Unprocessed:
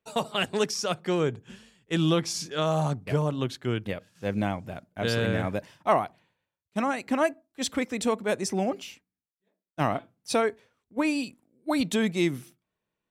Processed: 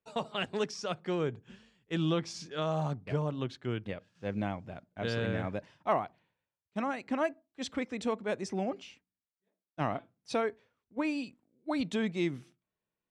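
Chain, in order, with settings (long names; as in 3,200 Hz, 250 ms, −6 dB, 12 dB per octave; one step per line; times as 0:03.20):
high-frequency loss of the air 93 metres
level −6 dB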